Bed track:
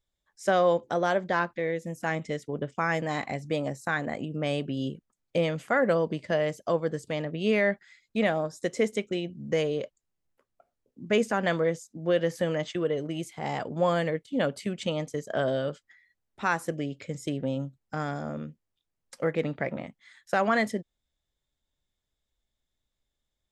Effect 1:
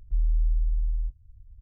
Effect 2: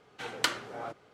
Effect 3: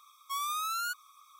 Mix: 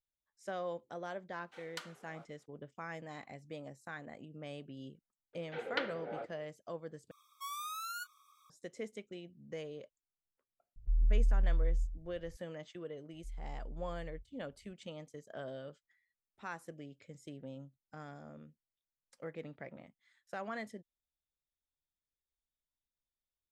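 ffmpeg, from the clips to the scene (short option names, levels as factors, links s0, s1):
-filter_complex "[2:a]asplit=2[s0][s1];[1:a]asplit=2[s2][s3];[0:a]volume=0.141[s4];[s0]highpass=400[s5];[s1]highpass=200,equalizer=f=500:t=q:w=4:g=10,equalizer=f=1100:t=q:w=4:g=-9,equalizer=f=2900:t=q:w=4:g=-4,lowpass=f=3300:w=0.5412,lowpass=f=3300:w=1.3066[s6];[3:a]asplit=2[s7][s8];[s8]adelay=27,volume=0.2[s9];[s7][s9]amix=inputs=2:normalize=0[s10];[s2]aecho=1:1:122:0.376[s11];[s3]highpass=41[s12];[s4]asplit=2[s13][s14];[s13]atrim=end=7.114[s15];[s10]atrim=end=1.39,asetpts=PTS-STARTPTS,volume=0.376[s16];[s14]atrim=start=8.496[s17];[s5]atrim=end=1.13,asetpts=PTS-STARTPTS,volume=0.141,afade=t=in:d=0.004:c=hsin,afade=t=out:st=1.126:d=0.004:c=hsin,adelay=1330[s18];[s6]atrim=end=1.13,asetpts=PTS-STARTPTS,volume=0.562,afade=t=in:d=0.004:c=hsin,afade=t=out:st=1.126:d=0.004:c=hsin,adelay=235053S[s19];[s11]atrim=end=1.61,asetpts=PTS-STARTPTS,volume=0.501,afade=t=in:d=0.004:c=hsin,afade=t=out:st=1.606:d=0.004:c=hsin,adelay=10760[s20];[s12]atrim=end=1.61,asetpts=PTS-STARTPTS,volume=0.133,afade=t=in:d=0.004:c=hsin,afade=t=out:st=1.606:d=0.004:c=hsin,adelay=13120[s21];[s15][s16]acrossfade=d=0.004:c1=hsin:c2=hsin[s22];[s22][s17]acrossfade=d=0.004:c1=hsin:c2=hsin[s23];[s23][s18][s19][s20][s21]amix=inputs=5:normalize=0"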